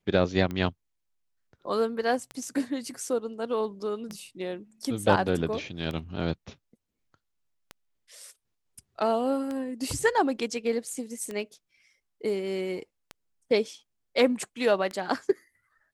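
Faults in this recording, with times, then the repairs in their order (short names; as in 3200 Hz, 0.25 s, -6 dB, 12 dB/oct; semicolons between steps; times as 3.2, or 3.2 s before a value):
tick 33 1/3 rpm -21 dBFS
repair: de-click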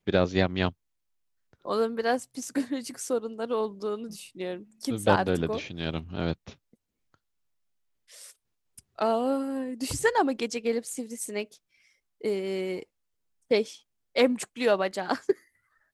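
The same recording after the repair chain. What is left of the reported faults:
none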